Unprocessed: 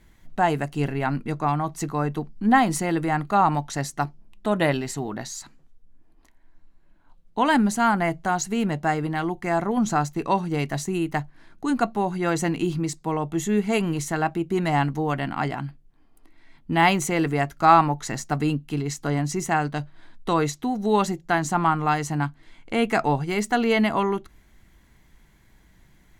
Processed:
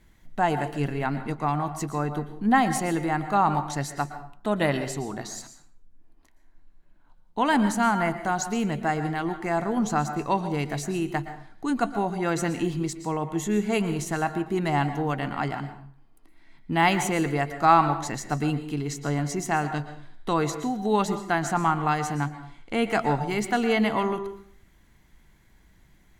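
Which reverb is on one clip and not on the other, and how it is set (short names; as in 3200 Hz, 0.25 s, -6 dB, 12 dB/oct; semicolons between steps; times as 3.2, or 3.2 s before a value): plate-style reverb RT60 0.53 s, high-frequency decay 0.75×, pre-delay 0.105 s, DRR 10 dB; gain -2.5 dB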